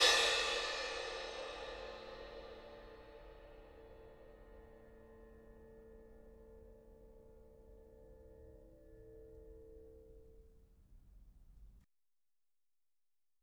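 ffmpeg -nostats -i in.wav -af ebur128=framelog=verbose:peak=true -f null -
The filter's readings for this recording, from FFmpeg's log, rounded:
Integrated loudness:
  I:         -37.9 LUFS
  Threshold: -54.5 LUFS
Loudness range:
  LRA:        19.1 LU
  Threshold: -71.0 LUFS
  LRA low:   -63.8 LUFS
  LRA high:  -44.7 LUFS
True peak:
  Peak:      -16.6 dBFS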